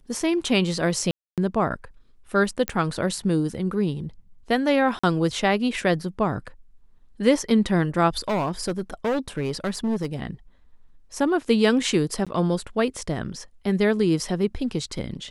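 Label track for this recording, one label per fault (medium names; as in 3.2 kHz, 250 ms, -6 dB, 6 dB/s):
1.110000	1.380000	dropout 267 ms
2.680000	2.680000	pop -8 dBFS
4.990000	5.040000	dropout 45 ms
8.280000	10.160000	clipped -20.5 dBFS
12.250000	12.270000	dropout 16 ms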